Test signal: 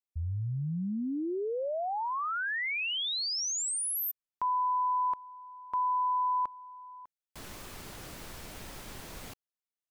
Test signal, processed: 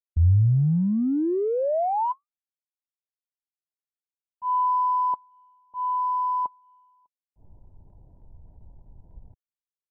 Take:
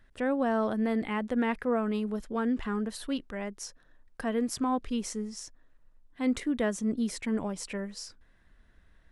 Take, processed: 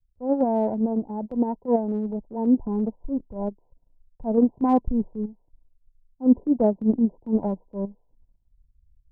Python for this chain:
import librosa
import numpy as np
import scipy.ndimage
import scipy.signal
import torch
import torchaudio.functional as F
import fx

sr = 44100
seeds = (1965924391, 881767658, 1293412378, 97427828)

p1 = scipy.signal.sosfilt(scipy.signal.ellip(8, 1.0, 80, 1000.0, 'lowpass', fs=sr, output='sos'), x)
p2 = fx.level_steps(p1, sr, step_db=9)
p3 = p1 + (p2 * 10.0 ** (1.5 / 20.0))
p4 = fx.transient(p3, sr, attack_db=-5, sustain_db=-9)
p5 = fx.rider(p4, sr, range_db=3, speed_s=2.0)
p6 = fx.band_widen(p5, sr, depth_pct=100)
y = p6 * 10.0 ** (3.5 / 20.0)